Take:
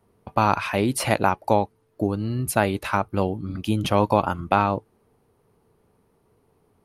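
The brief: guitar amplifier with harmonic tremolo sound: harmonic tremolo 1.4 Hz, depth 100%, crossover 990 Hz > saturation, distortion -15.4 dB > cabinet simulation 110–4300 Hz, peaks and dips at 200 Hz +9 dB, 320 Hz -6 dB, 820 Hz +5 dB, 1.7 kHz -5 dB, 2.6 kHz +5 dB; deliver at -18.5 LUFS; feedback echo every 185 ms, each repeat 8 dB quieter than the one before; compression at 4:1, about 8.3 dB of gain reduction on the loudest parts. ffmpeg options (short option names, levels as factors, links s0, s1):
-filter_complex "[0:a]acompressor=threshold=0.0708:ratio=4,aecho=1:1:185|370|555|740|925:0.398|0.159|0.0637|0.0255|0.0102,acrossover=split=990[s0][s1];[s0]aeval=exprs='val(0)*(1-1/2+1/2*cos(2*PI*1.4*n/s))':c=same[s2];[s1]aeval=exprs='val(0)*(1-1/2-1/2*cos(2*PI*1.4*n/s))':c=same[s3];[s2][s3]amix=inputs=2:normalize=0,asoftclip=threshold=0.0841,highpass=110,equalizer=f=200:t=q:w=4:g=9,equalizer=f=320:t=q:w=4:g=-6,equalizer=f=820:t=q:w=4:g=5,equalizer=f=1700:t=q:w=4:g=-5,equalizer=f=2600:t=q:w=4:g=5,lowpass=f=4300:w=0.5412,lowpass=f=4300:w=1.3066,volume=5.31"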